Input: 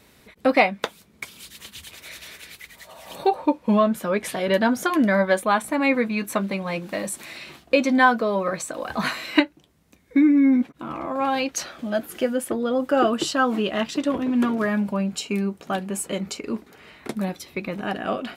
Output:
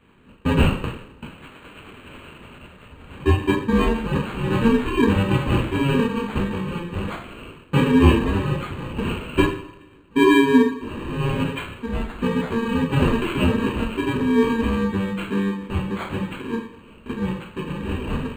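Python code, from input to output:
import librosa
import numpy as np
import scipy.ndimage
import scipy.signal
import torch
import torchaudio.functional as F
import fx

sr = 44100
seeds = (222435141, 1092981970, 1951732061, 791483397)

y = fx.bit_reversed(x, sr, seeds[0], block=64)
y = fx.rev_double_slope(y, sr, seeds[1], early_s=0.55, late_s=1.6, knee_db=-18, drr_db=-7.5)
y = np.interp(np.arange(len(y)), np.arange(len(y))[::8], y[::8])
y = y * librosa.db_to_amplitude(-6.5)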